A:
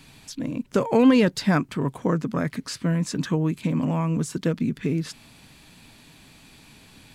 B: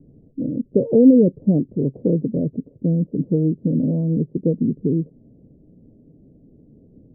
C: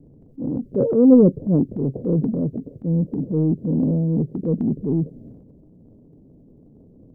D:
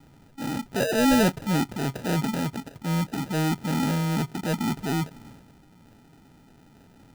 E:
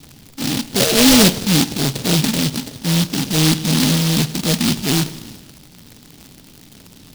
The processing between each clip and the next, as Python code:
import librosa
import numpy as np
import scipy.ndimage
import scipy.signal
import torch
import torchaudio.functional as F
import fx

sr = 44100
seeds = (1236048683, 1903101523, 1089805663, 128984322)

y1 = scipy.signal.sosfilt(scipy.signal.butter(8, 540.0, 'lowpass', fs=sr, output='sos'), x)
y1 = fx.low_shelf(y1, sr, hz=130.0, db=-6.5)
y1 = y1 * librosa.db_to_amplitude(6.5)
y2 = fx.transient(y1, sr, attack_db=-8, sustain_db=9)
y3 = fx.sample_hold(y2, sr, seeds[0], rate_hz=1100.0, jitter_pct=0)
y3 = 10.0 ** (-10.5 / 20.0) * np.tanh(y3 / 10.0 ** (-10.5 / 20.0))
y3 = y3 * librosa.db_to_amplitude(-4.5)
y4 = fx.dmg_crackle(y3, sr, seeds[1], per_s=120.0, level_db=-35.0)
y4 = fx.rev_spring(y4, sr, rt60_s=1.3, pass_ms=(51,), chirp_ms=50, drr_db=14.0)
y4 = fx.noise_mod_delay(y4, sr, seeds[2], noise_hz=3900.0, depth_ms=0.29)
y4 = y4 * librosa.db_to_amplitude(9.0)